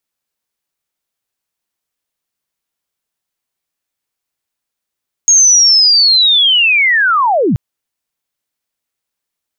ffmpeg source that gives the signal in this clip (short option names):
-f lavfi -i "aevalsrc='pow(10,(-4-5*t/2.28)/20)*sin(2*PI*(6600*t-6504*t*t/(2*2.28)))':d=2.28:s=44100"